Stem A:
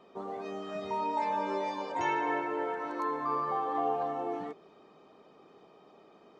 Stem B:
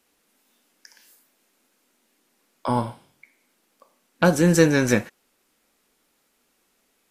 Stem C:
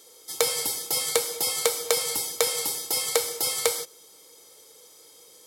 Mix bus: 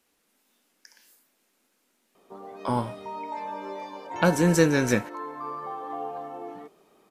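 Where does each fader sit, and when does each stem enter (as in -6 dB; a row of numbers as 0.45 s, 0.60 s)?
-3.5 dB, -3.5 dB, mute; 2.15 s, 0.00 s, mute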